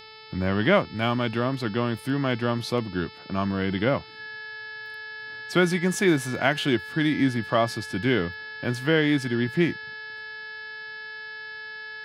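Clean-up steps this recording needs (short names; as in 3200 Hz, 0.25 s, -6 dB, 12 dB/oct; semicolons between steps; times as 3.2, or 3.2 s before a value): de-hum 437.2 Hz, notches 12; notch 1700 Hz, Q 30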